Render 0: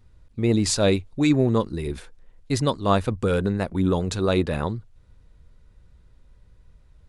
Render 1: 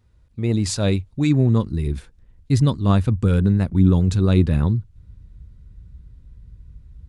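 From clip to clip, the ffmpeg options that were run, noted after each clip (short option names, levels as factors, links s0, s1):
-af "highpass=41,asubboost=boost=7.5:cutoff=230,volume=0.75"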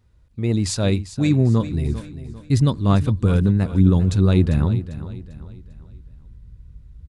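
-af "aecho=1:1:397|794|1191|1588:0.211|0.0845|0.0338|0.0135"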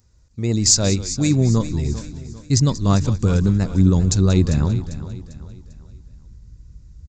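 -filter_complex "[0:a]aresample=16000,aresample=44100,aexciter=amount=7.7:drive=4.4:freq=4800,asplit=4[s0][s1][s2][s3];[s1]adelay=184,afreqshift=-120,volume=0.178[s4];[s2]adelay=368,afreqshift=-240,volume=0.0603[s5];[s3]adelay=552,afreqshift=-360,volume=0.0207[s6];[s0][s4][s5][s6]amix=inputs=4:normalize=0"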